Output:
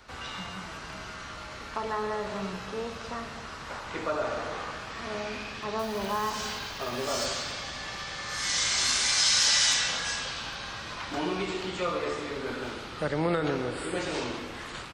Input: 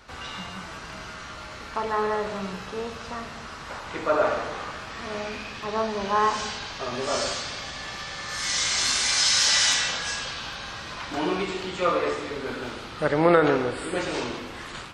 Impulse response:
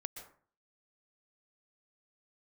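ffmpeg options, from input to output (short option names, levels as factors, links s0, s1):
-filter_complex "[0:a]acrossover=split=220|3000[s0][s1][s2];[s1]acompressor=threshold=0.0447:ratio=3[s3];[s0][s3][s2]amix=inputs=3:normalize=0,asettb=1/sr,asplit=3[s4][s5][s6];[s4]atrim=end=5.794[s7];[s5]atrim=start=5.79:end=7.26,asetpts=PTS-STARTPTS,afade=t=in:d=0.004:c=qsin,afade=t=out:st=1.466:d=0.004:c=qsin,acrusher=bits=4:mode=log:mix=0:aa=0.000001[s8];[s6]atrim=start=7.256[s9];[s7][s8]acrossfade=d=0.004:c1=hsin:c2=qsin[s10];[s10][s9]acrossfade=d=0.004:c1=qsin:c2=hsin,aecho=1:1:265|530|795:0.15|0.0449|0.0135,volume=0.794"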